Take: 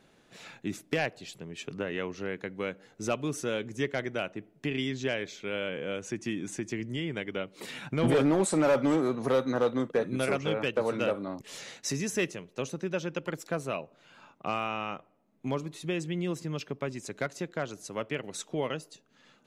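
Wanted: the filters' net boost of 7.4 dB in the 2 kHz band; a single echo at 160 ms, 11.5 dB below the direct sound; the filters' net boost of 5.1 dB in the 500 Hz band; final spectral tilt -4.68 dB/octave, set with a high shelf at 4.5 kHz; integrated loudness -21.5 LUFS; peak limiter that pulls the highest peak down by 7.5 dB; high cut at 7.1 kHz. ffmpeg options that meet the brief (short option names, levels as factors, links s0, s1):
-af "lowpass=7100,equalizer=f=500:t=o:g=5.5,equalizer=f=2000:t=o:g=8.5,highshelf=f=4500:g=3.5,alimiter=limit=0.126:level=0:latency=1,aecho=1:1:160:0.266,volume=2.82"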